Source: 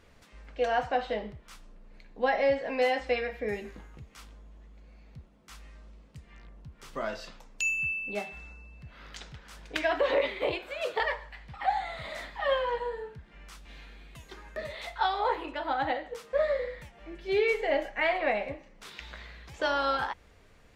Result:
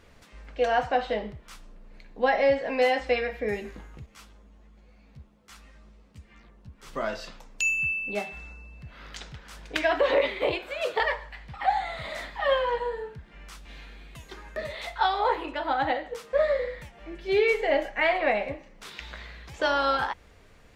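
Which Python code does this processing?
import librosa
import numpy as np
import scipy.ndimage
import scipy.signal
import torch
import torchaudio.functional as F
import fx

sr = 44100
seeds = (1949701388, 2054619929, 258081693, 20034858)

y = fx.ensemble(x, sr, at=(4.06, 6.87))
y = y * librosa.db_to_amplitude(3.5)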